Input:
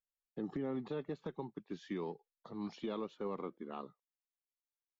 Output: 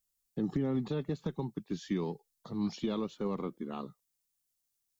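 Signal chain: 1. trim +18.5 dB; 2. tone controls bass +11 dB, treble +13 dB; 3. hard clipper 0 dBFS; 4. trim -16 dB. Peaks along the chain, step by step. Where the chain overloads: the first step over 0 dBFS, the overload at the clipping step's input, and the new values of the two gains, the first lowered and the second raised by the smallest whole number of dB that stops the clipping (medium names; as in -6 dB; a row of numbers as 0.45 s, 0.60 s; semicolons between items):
-11.0 dBFS, -5.5 dBFS, -5.5 dBFS, -21.5 dBFS; nothing clips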